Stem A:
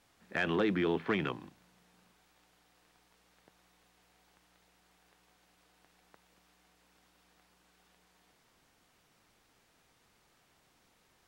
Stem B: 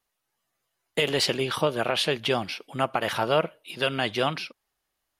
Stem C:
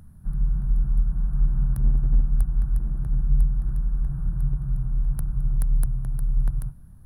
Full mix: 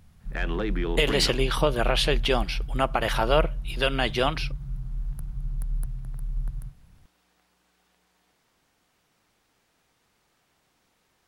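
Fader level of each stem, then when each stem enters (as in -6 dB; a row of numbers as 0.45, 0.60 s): 0.0, +1.0, -8.0 dB; 0.00, 0.00, 0.00 s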